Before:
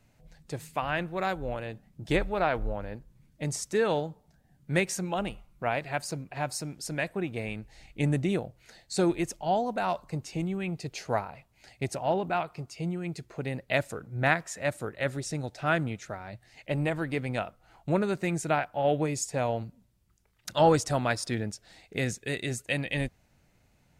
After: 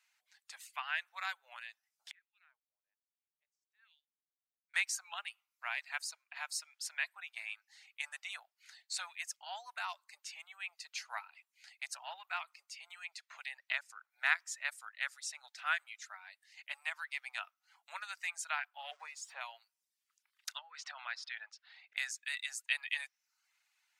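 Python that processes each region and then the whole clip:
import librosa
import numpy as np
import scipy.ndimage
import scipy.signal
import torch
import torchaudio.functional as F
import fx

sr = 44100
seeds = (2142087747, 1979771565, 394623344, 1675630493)

y = fx.chain(x, sr, fx.tone_stack(knobs='10-0-1'),
    fx.wah_lfo(hz=1.2, low_hz=280.0, high_hz=3000.0, q=2.0), at=(2.11, 4.74))
y = fx.chain(y, sr, fx.high_shelf(hz=6600.0, db=-10.0),
    fx.band_squash(depth_pct=70), at=(12.9, 14.1))
y = fx.chain(y, sr, fx.zero_step(step_db=-40.5),
    fx.tilt_eq(slope=-4.5), at=(18.91, 19.41))
y = fx.chain(y, sr, fx.over_compress(threshold_db=-30.0, ratio=-1.0),
    fx.air_absorb(metres=240.0), at=(20.57, 21.97))
y = fx.dereverb_blind(y, sr, rt60_s=0.57)
y = scipy.signal.sosfilt(scipy.signal.bessel(8, 1700.0, 'highpass', norm='mag', fs=sr, output='sos'), y)
y = fx.high_shelf(y, sr, hz=8700.0, db=-8.0)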